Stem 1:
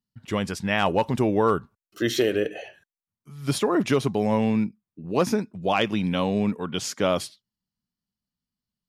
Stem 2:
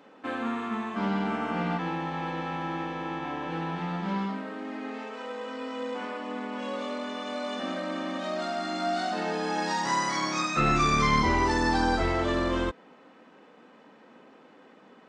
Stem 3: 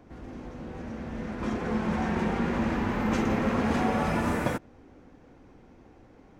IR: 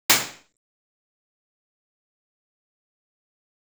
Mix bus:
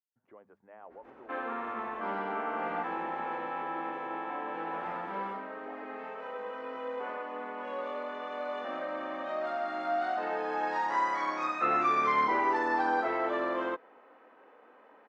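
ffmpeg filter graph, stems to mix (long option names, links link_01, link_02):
-filter_complex "[0:a]lowpass=1000,bandreject=frequency=50:width_type=h:width=6,bandreject=frequency=100:width_type=h:width=6,bandreject=frequency=150:width_type=h:width=6,bandreject=frequency=200:width_type=h:width=6,acompressor=threshold=-41dB:ratio=2,volume=-13dB,asplit=2[link_01][link_02];[1:a]highpass=130,highshelf=frequency=8500:gain=-5.5,adelay=1050,volume=-0.5dB[link_03];[2:a]acompressor=threshold=-36dB:ratio=6,adelay=800,volume=-0.5dB[link_04];[link_02]apad=whole_len=317288[link_05];[link_04][link_05]sidechaincompress=threshold=-55dB:ratio=8:attack=16:release=112[link_06];[link_01][link_03][link_06]amix=inputs=3:normalize=0,acrossover=split=350 2300:gain=0.0631 1 0.1[link_07][link_08][link_09];[link_07][link_08][link_09]amix=inputs=3:normalize=0"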